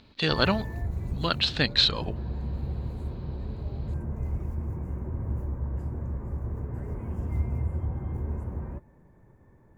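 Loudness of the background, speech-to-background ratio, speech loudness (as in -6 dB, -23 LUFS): -34.0 LUFS, 9.0 dB, -25.0 LUFS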